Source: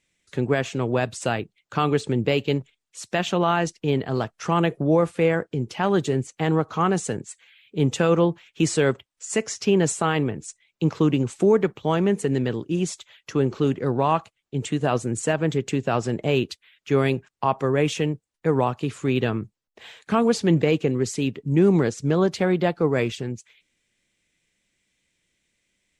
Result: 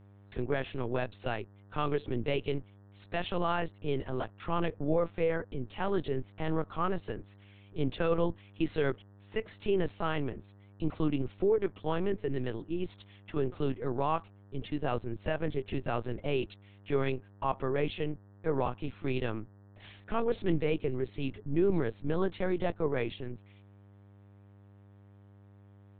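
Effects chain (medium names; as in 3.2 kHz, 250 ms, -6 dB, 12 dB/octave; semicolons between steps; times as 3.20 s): dynamic bell 220 Hz, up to -3 dB, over -42 dBFS, Q 7.4; LPC vocoder at 8 kHz pitch kept; mains buzz 100 Hz, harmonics 19, -47 dBFS -8 dB/octave; trim -9 dB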